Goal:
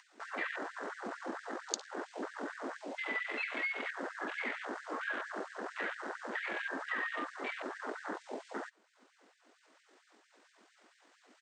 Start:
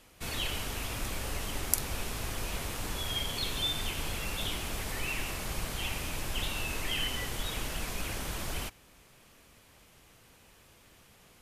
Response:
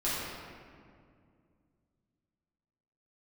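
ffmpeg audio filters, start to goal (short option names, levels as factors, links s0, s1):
-filter_complex "[0:a]asplit=2[s0][s1];[s1]adelay=848,lowpass=f=1100:p=1,volume=0.0944,asplit=2[s2][s3];[s3]adelay=848,lowpass=f=1100:p=1,volume=0.49,asplit=2[s4][s5];[s5]adelay=848,lowpass=f=1100:p=1,volume=0.49,asplit=2[s6][s7];[s7]adelay=848,lowpass=f=1100:p=1,volume=0.49[s8];[s0][s2][s4][s6][s8]amix=inputs=5:normalize=0,acompressor=mode=upward:threshold=0.00794:ratio=2.5,highpass=150,afwtdn=0.01,equalizer=f=360:w=0.39:g=4.5,asetrate=26990,aresample=44100,atempo=1.63392,highshelf=f=5500:g=-9.5,acompressor=threshold=0.01:ratio=4,afftfilt=real='re*gte(b*sr/1024,210*pow(1600/210,0.5+0.5*sin(2*PI*4.4*pts/sr)))':imag='im*gte(b*sr/1024,210*pow(1600/210,0.5+0.5*sin(2*PI*4.4*pts/sr)))':win_size=1024:overlap=0.75,volume=2.11"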